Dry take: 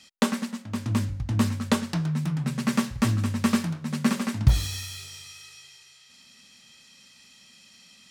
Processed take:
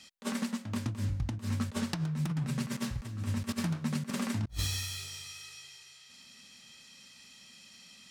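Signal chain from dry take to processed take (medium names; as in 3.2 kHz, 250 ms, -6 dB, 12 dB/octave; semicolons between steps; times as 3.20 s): compressor with a negative ratio -28 dBFS, ratio -0.5; trim -4.5 dB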